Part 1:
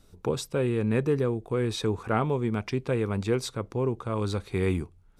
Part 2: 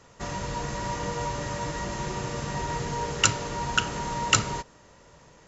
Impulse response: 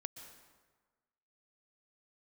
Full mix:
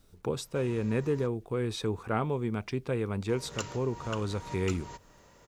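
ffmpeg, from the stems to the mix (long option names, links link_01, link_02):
-filter_complex "[0:a]volume=-4dB,asplit=2[link_01][link_02];[1:a]acontrast=45,adelay=350,volume=-10dB,asplit=3[link_03][link_04][link_05];[link_03]atrim=end=1.27,asetpts=PTS-STARTPTS,afade=type=out:start_time=1.266:duration=0.004:curve=hsin[link_06];[link_04]atrim=start=1.27:end=3.29,asetpts=PTS-STARTPTS,volume=0[link_07];[link_05]atrim=start=3.29,asetpts=PTS-STARTPTS,afade=type=in:duration=0.004:curve=hsin[link_08];[link_06][link_07][link_08]concat=n=3:v=0:a=1[link_09];[link_02]apad=whole_len=256780[link_10];[link_09][link_10]sidechaincompress=threshold=-42dB:ratio=8:attack=23:release=303[link_11];[link_01][link_11]amix=inputs=2:normalize=0,acrusher=bits=11:mix=0:aa=0.000001"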